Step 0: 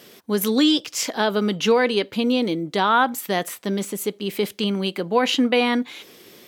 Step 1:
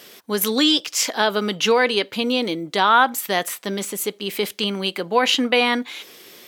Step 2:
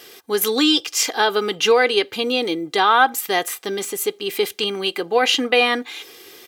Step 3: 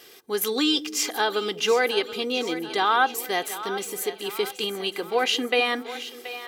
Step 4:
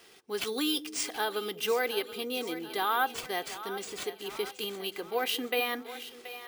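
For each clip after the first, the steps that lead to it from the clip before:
low-shelf EQ 430 Hz −10 dB; level +4.5 dB
comb filter 2.5 ms, depth 58%
echo with a time of its own for lows and highs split 480 Hz, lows 199 ms, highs 728 ms, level −13 dB; level −6 dB
bad sample-rate conversion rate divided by 3×, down none, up hold; level −7.5 dB

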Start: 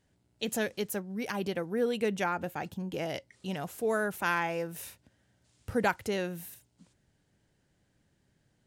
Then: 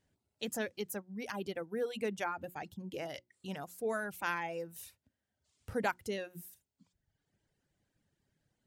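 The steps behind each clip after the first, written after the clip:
mains-hum notches 60/120/180/240/300/360 Hz
reverb reduction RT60 1.1 s
level −5 dB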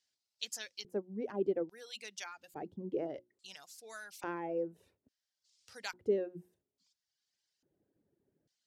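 auto-filter band-pass square 0.59 Hz 380–5,000 Hz
low-shelf EQ 100 Hz +7 dB
level +9.5 dB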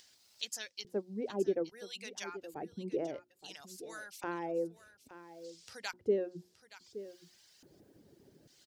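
upward compression, threshold −48 dBFS
single-tap delay 871 ms −14.5 dB
level +1 dB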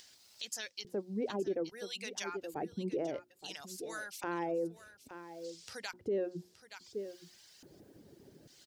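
brickwall limiter −31 dBFS, peak gain reduction 11.5 dB
level +4 dB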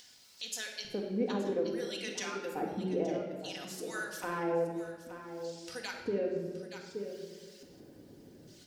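rectangular room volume 1,800 cubic metres, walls mixed, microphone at 1.9 metres

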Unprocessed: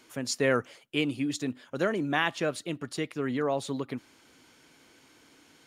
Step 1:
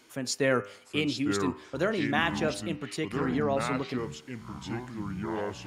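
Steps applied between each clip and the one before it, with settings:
hum removal 100.8 Hz, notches 31
delay with pitch and tempo change per echo 722 ms, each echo −5 semitones, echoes 3, each echo −6 dB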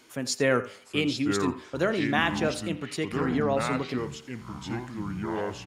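single-tap delay 84 ms −18 dB
level +2 dB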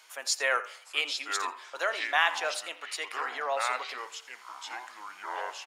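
high-pass filter 690 Hz 24 dB per octave
level +1.5 dB

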